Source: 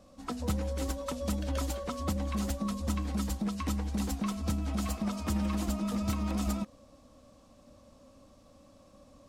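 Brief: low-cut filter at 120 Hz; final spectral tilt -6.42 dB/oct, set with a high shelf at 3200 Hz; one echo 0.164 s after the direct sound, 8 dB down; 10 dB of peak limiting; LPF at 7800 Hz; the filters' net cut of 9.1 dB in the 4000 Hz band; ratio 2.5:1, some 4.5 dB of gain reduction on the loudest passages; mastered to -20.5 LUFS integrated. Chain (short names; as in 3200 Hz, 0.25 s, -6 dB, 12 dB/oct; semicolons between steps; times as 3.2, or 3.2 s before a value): HPF 120 Hz; LPF 7800 Hz; high shelf 3200 Hz -6.5 dB; bell 4000 Hz -6.5 dB; compressor 2.5:1, threshold -36 dBFS; limiter -35.5 dBFS; echo 0.164 s -8 dB; gain +22.5 dB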